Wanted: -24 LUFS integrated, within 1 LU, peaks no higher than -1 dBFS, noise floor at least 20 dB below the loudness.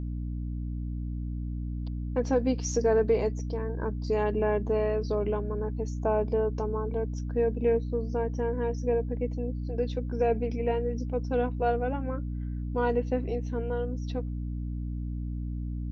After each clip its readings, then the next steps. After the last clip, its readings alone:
hum 60 Hz; harmonics up to 300 Hz; hum level -30 dBFS; loudness -30.0 LUFS; peak -13.5 dBFS; loudness target -24.0 LUFS
-> notches 60/120/180/240/300 Hz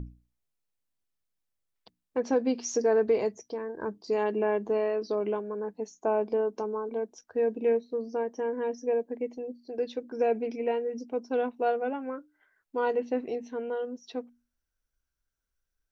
hum none; loudness -30.5 LUFS; peak -15.0 dBFS; loudness target -24.0 LUFS
-> gain +6.5 dB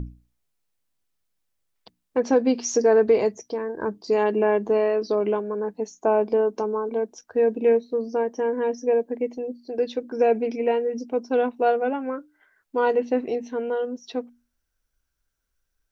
loudness -24.0 LUFS; peak -8.5 dBFS; noise floor -77 dBFS

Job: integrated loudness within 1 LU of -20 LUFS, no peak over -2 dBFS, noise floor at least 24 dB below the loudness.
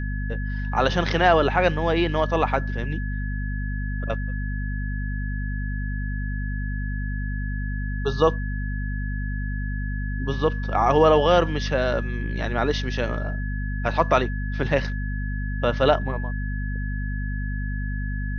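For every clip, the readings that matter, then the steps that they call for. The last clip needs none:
hum 50 Hz; harmonics up to 250 Hz; hum level -25 dBFS; steady tone 1700 Hz; tone level -36 dBFS; loudness -25.0 LUFS; peak -5.0 dBFS; loudness target -20.0 LUFS
-> de-hum 50 Hz, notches 5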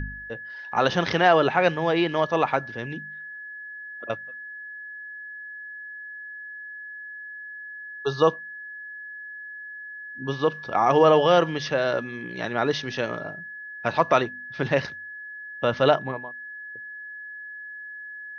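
hum none; steady tone 1700 Hz; tone level -36 dBFS
-> notch 1700 Hz, Q 30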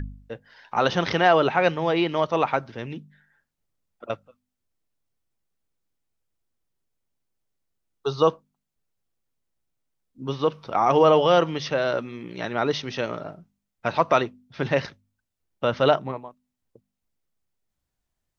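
steady tone none; loudness -23.0 LUFS; peak -5.5 dBFS; loudness target -20.0 LUFS
-> gain +3 dB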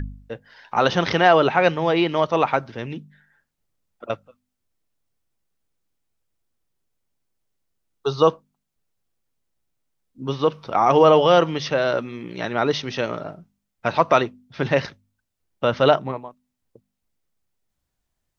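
loudness -20.0 LUFS; peak -2.5 dBFS; noise floor -79 dBFS

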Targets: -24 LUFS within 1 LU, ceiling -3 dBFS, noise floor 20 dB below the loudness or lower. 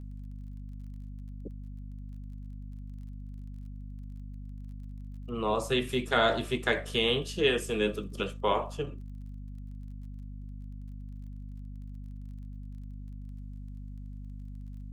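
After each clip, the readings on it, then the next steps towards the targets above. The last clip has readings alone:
ticks 28/s; hum 50 Hz; harmonics up to 250 Hz; hum level -39 dBFS; loudness -30.0 LUFS; peak -10.0 dBFS; loudness target -24.0 LUFS
-> de-click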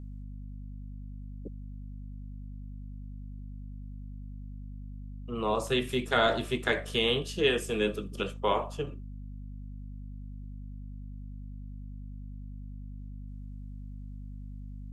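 ticks 0/s; hum 50 Hz; harmonics up to 250 Hz; hum level -39 dBFS
-> de-hum 50 Hz, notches 5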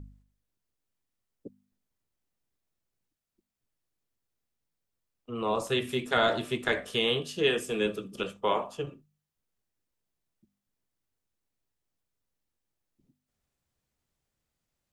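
hum none; loudness -29.5 LUFS; peak -11.0 dBFS; loudness target -24.0 LUFS
-> gain +5.5 dB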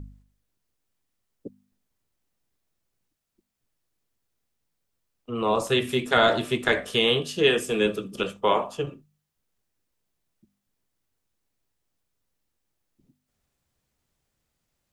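loudness -24.0 LUFS; peak -5.5 dBFS; noise floor -80 dBFS

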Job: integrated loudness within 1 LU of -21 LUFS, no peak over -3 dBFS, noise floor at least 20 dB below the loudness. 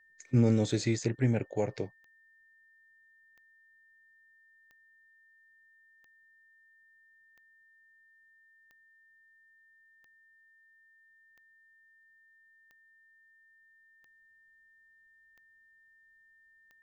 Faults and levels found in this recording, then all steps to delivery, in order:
clicks 13; steady tone 1800 Hz; tone level -61 dBFS; loudness -30.0 LUFS; peak -14.5 dBFS; loudness target -21.0 LUFS
-> de-click; notch 1800 Hz, Q 30; gain +9 dB

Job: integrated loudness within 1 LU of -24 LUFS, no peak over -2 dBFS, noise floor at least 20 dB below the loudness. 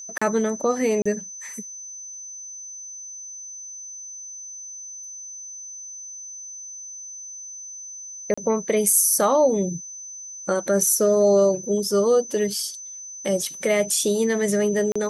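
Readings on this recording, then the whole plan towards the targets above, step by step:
dropouts 4; longest dropout 35 ms; steady tone 6100 Hz; tone level -35 dBFS; loudness -21.0 LUFS; peak -5.5 dBFS; loudness target -24.0 LUFS
-> interpolate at 0.18/1.02/8.34/14.92, 35 ms; notch 6100 Hz, Q 30; gain -3 dB

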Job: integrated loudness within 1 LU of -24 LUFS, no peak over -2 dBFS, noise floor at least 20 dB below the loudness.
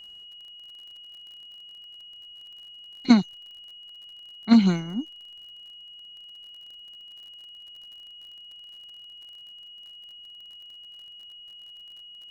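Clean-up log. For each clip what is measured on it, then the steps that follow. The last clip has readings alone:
ticks 40/s; steady tone 2900 Hz; tone level -43 dBFS; loudness -22.5 LUFS; peak -5.0 dBFS; loudness target -24.0 LUFS
-> de-click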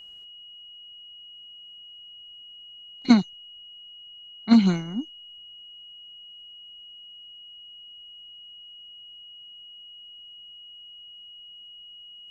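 ticks 0/s; steady tone 2900 Hz; tone level -43 dBFS
-> notch 2900 Hz, Q 30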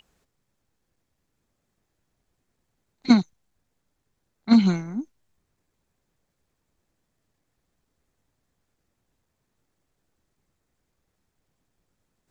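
steady tone none; loudness -20.5 LUFS; peak -5.5 dBFS; loudness target -24.0 LUFS
-> gain -3.5 dB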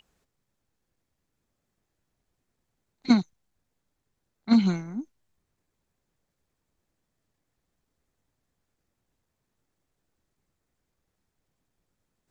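loudness -24.0 LUFS; peak -9.0 dBFS; noise floor -81 dBFS

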